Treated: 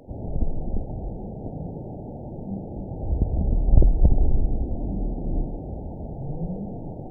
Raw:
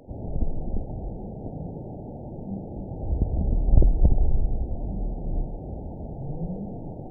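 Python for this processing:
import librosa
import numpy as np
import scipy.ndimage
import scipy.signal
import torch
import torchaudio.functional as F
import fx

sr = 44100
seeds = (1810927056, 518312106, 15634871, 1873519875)

y = fx.dynamic_eq(x, sr, hz=280.0, q=1.7, threshold_db=-49.0, ratio=4.0, max_db=6, at=(4.13, 5.61))
y = F.gain(torch.from_numpy(y), 1.5).numpy()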